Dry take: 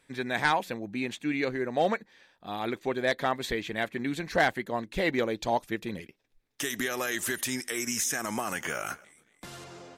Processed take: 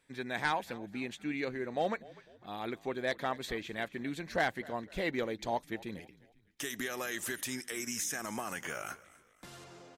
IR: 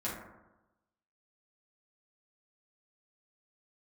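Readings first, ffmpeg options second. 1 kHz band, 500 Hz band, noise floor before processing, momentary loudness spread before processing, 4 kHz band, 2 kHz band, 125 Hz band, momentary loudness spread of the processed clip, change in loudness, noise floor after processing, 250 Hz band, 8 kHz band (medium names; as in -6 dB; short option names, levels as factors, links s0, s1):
-6.5 dB, -6.5 dB, -67 dBFS, 13 LU, -6.5 dB, -6.5 dB, -6.5 dB, 15 LU, -6.5 dB, -66 dBFS, -6.5 dB, -6.5 dB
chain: -filter_complex "[0:a]asplit=4[s0][s1][s2][s3];[s1]adelay=249,afreqshift=-47,volume=0.0891[s4];[s2]adelay=498,afreqshift=-94,volume=0.0385[s5];[s3]adelay=747,afreqshift=-141,volume=0.0164[s6];[s0][s4][s5][s6]amix=inputs=4:normalize=0,volume=0.473"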